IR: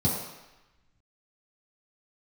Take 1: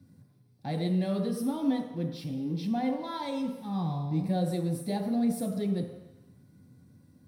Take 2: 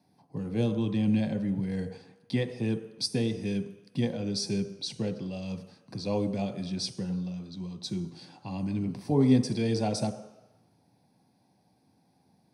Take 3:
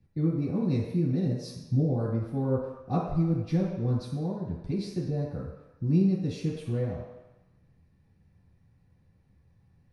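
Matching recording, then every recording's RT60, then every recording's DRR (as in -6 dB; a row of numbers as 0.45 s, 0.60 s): 3; 1.0 s, 1.0 s, 1.0 s; 0.5 dB, 7.5 dB, -8.0 dB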